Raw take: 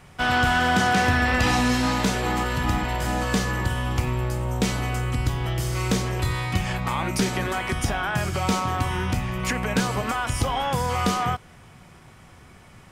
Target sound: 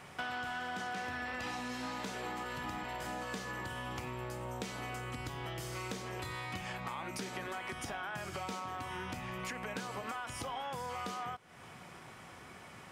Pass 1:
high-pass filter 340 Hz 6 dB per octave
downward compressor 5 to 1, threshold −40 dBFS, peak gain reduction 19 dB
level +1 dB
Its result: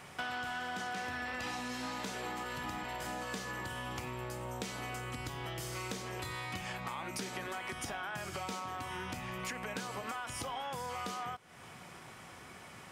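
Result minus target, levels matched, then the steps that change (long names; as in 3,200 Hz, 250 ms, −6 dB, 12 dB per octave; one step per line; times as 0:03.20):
8,000 Hz band +2.5 dB
add after downward compressor: high-shelf EQ 3,900 Hz −4 dB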